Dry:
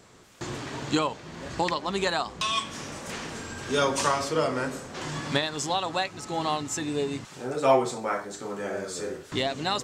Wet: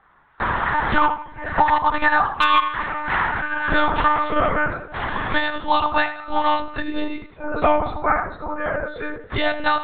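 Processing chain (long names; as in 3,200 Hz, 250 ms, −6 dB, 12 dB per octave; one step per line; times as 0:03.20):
noise reduction from a noise print of the clip's start 17 dB
flat-topped bell 1,200 Hz +16 dB, from 0:03.77 +8.5 dB
downward compressor 8 to 1, threshold −18 dBFS, peak gain reduction 9.5 dB
tape delay 87 ms, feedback 38%, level −10 dB, low-pass 3,100 Hz
one-pitch LPC vocoder at 8 kHz 300 Hz
slew-rate limiting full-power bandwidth 500 Hz
level +5 dB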